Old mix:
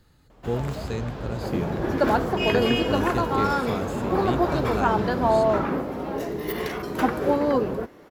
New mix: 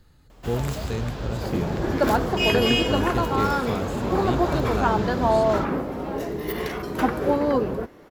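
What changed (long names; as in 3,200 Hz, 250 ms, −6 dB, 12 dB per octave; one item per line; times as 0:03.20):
first sound: add high-shelf EQ 3,100 Hz +11.5 dB
master: add low-shelf EQ 68 Hz +7.5 dB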